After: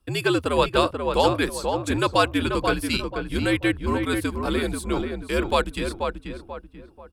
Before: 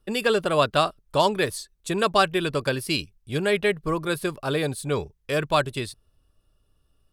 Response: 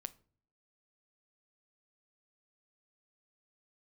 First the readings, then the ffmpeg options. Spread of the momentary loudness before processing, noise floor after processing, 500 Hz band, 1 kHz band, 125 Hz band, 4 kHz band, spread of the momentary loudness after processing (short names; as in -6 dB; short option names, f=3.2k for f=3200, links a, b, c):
8 LU, -49 dBFS, 0.0 dB, +0.5 dB, +1.5 dB, 0.0 dB, 8 LU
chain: -filter_complex "[0:a]afreqshift=-85,asplit=2[a][b];[b]adelay=486,lowpass=f=1.8k:p=1,volume=-4.5dB,asplit=2[c][d];[d]adelay=486,lowpass=f=1.8k:p=1,volume=0.37,asplit=2[e][f];[f]adelay=486,lowpass=f=1.8k:p=1,volume=0.37,asplit=2[g][h];[h]adelay=486,lowpass=f=1.8k:p=1,volume=0.37,asplit=2[i][j];[j]adelay=486,lowpass=f=1.8k:p=1,volume=0.37[k];[c][e][g][i][k]amix=inputs=5:normalize=0[l];[a][l]amix=inputs=2:normalize=0"